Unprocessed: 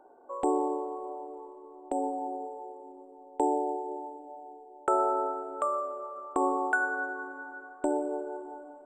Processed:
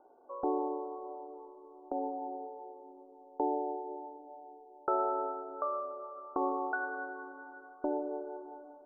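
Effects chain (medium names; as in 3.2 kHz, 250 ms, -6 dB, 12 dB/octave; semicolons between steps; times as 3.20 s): elliptic low-pass 1.4 kHz, stop band 40 dB; trim -4.5 dB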